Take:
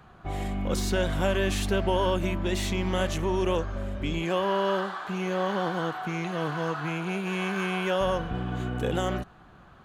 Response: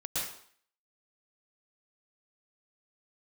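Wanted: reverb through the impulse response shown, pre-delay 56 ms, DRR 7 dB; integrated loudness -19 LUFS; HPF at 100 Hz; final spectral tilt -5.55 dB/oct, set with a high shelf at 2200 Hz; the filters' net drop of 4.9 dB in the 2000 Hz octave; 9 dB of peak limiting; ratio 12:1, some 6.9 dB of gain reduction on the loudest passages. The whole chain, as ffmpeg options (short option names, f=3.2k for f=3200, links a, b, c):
-filter_complex "[0:a]highpass=100,equalizer=f=2k:t=o:g=-5,highshelf=f=2.2k:g=-3.5,acompressor=threshold=-29dB:ratio=12,alimiter=level_in=5dB:limit=-24dB:level=0:latency=1,volume=-5dB,asplit=2[a][b];[1:a]atrim=start_sample=2205,adelay=56[c];[b][c]afir=irnorm=-1:irlink=0,volume=-12dB[d];[a][d]amix=inputs=2:normalize=0,volume=17.5dB"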